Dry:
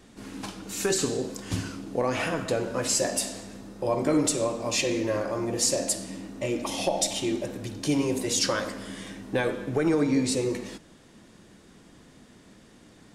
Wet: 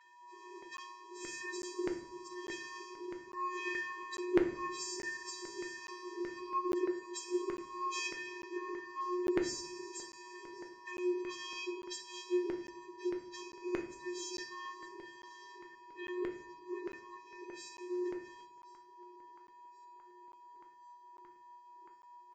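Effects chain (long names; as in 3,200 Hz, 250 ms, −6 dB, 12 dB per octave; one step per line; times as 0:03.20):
source passing by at 0:03.63, 8 m/s, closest 5.4 metres
Butterworth high-pass 210 Hz 48 dB per octave
parametric band 1,100 Hz −11.5 dB 0.61 octaves
downward compressor 4 to 1, threshold −43 dBFS, peak gain reduction 18 dB
channel vocoder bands 32, square 360 Hz
steady tone 970 Hz −70 dBFS
time stretch by phase vocoder 1.7×
auto-filter high-pass saw down 1.6 Hz 460–1,900 Hz
repeating echo 1,078 ms, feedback 58%, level −22.5 dB
rectangular room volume 80 cubic metres, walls mixed, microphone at 0.44 metres
regular buffer underruns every 0.85 s, samples 512, zero, from 0:00.77
level +17.5 dB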